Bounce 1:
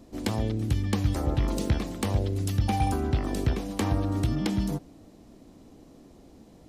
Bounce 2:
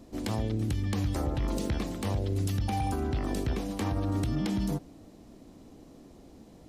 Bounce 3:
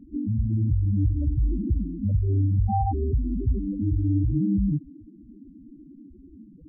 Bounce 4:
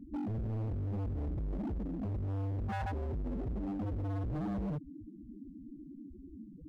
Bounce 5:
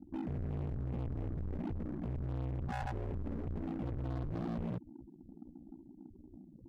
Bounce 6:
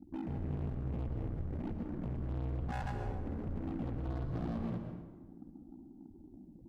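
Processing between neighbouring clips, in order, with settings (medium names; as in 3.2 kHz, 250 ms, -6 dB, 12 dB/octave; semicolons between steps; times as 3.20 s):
peak limiter -21.5 dBFS, peak gain reduction 8 dB
loudest bins only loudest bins 4; trim +8.5 dB
in parallel at -1 dB: compression 10:1, threshold -32 dBFS, peak gain reduction 15 dB; on the sum: hard clipper -26.5 dBFS, distortion -7 dB; trim -7.5 dB
ring modulator 30 Hz; Chebyshev shaper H 7 -25 dB, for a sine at -33.5 dBFS; trim +1 dB
reverberation RT60 1.3 s, pre-delay 103 ms, DRR 5 dB; trim -1 dB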